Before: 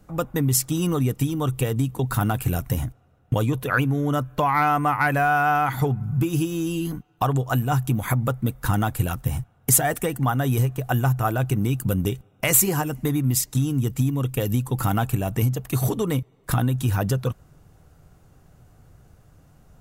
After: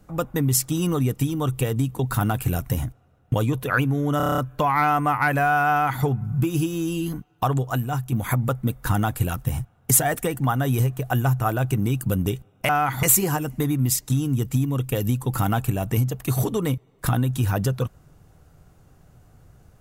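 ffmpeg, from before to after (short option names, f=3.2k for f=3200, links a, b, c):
-filter_complex "[0:a]asplit=11[a][b][c][d][e][f][g][h][i][j][k];[a]atrim=end=4.202[l];[b]atrim=start=4.168:end=4.202[m];[c]atrim=start=4.168:end=4.202[n];[d]atrim=start=4.168:end=4.202[o];[e]atrim=start=4.168:end=4.202[p];[f]atrim=start=4.168:end=4.202[q];[g]atrim=start=4.168:end=4.202[r];[h]atrim=start=4.168:end=7.91,asetpts=PTS-STARTPTS,afade=t=out:st=3.122:d=0.62:silence=0.473151[s];[i]atrim=start=7.91:end=12.482,asetpts=PTS-STARTPTS,afade=t=in:d=0.004:c=hsin:silence=0.473151[t];[j]atrim=start=5.488:end=5.832[u];[k]atrim=start=12.478[v];[l][m]acrossfade=d=0.004:c1=hsin:c2=hsin[w];[w][n]acrossfade=d=0.004:c1=hsin:c2=hsin[x];[x][o]acrossfade=d=0.004:c1=hsin:c2=hsin[y];[y][p]acrossfade=d=0.004:c1=hsin:c2=hsin[z];[z][q]acrossfade=d=0.004:c1=hsin:c2=hsin[aa];[aa][r]acrossfade=d=0.004:c1=hsin:c2=hsin[ab];[s][t]concat=n=2:v=0:a=1[ac];[ab][ac]acrossfade=d=0.004:c1=hsin:c2=hsin[ad];[ad][u]acrossfade=d=0.004:c1=hsin:c2=hsin[ae];[ae][v]acrossfade=d=0.004:c1=hsin:c2=hsin"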